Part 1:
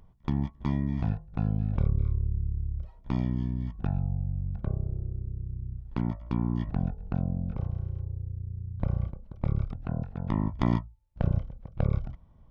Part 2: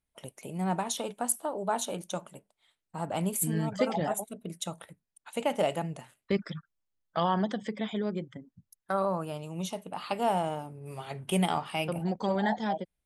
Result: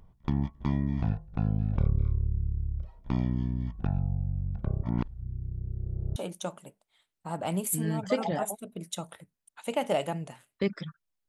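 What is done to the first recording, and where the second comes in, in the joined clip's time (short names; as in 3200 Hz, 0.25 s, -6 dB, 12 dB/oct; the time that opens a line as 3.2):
part 1
4.83–6.16 reverse
6.16 switch to part 2 from 1.85 s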